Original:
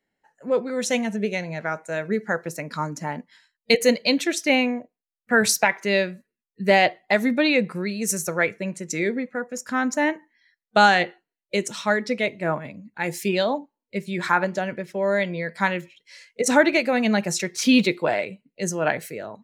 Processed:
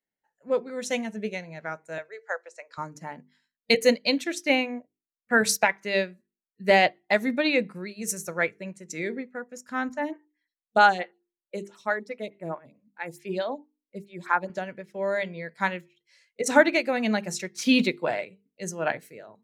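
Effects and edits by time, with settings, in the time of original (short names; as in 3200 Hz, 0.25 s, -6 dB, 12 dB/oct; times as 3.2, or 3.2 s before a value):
1.98–2.78 elliptic band-pass 510–7900 Hz
9.89–14.5 photocell phaser 4.6 Hz
whole clip: notches 50/100/150/200/250/300/350/400/450 Hz; upward expander 1.5:1, over -41 dBFS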